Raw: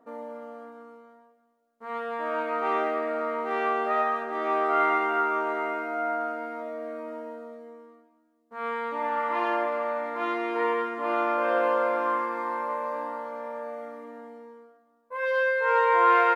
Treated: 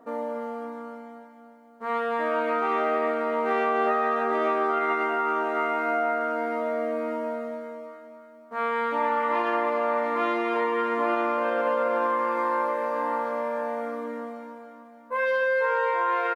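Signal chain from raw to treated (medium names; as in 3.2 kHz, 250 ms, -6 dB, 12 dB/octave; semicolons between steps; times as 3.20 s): peak limiter -17.5 dBFS, peak gain reduction 8.5 dB; compression, threshold -30 dBFS, peak gain reduction 8 dB; on a send: feedback delay 292 ms, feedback 57%, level -10 dB; on the sum: trim +7.5 dB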